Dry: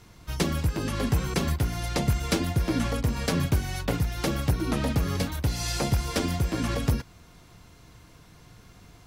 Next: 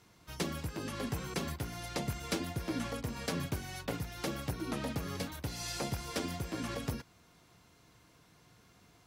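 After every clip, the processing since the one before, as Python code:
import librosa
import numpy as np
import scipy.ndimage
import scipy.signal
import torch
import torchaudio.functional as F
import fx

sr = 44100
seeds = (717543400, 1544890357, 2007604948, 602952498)

y = fx.highpass(x, sr, hz=170.0, slope=6)
y = F.gain(torch.from_numpy(y), -8.0).numpy()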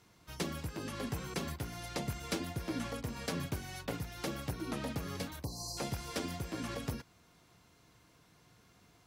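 y = fx.spec_erase(x, sr, start_s=5.44, length_s=0.34, low_hz=1200.0, high_hz=4000.0)
y = F.gain(torch.from_numpy(y), -1.5).numpy()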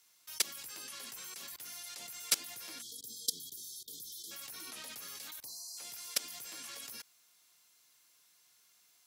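y = np.diff(x, prepend=0.0)
y = fx.level_steps(y, sr, step_db=21)
y = fx.spec_erase(y, sr, start_s=2.82, length_s=1.49, low_hz=490.0, high_hz=3100.0)
y = F.gain(torch.from_numpy(y), 16.5).numpy()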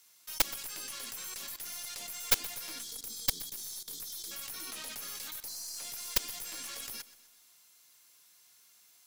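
y = fx.tracing_dist(x, sr, depth_ms=0.15)
y = fx.high_shelf(y, sr, hz=8400.0, db=4.5)
y = fx.echo_feedback(y, sr, ms=125, feedback_pct=50, wet_db=-17.5)
y = F.gain(torch.from_numpy(y), 3.0).numpy()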